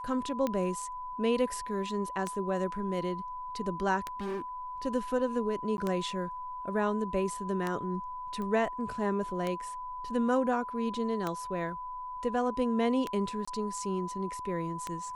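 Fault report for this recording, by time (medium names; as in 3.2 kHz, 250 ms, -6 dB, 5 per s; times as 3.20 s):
tick 33 1/3 rpm -18 dBFS
whine 1 kHz -37 dBFS
4.20–4.42 s: clipped -32 dBFS
5.77–5.78 s: dropout 11 ms
8.42 s: pop -27 dBFS
13.45–13.47 s: dropout 25 ms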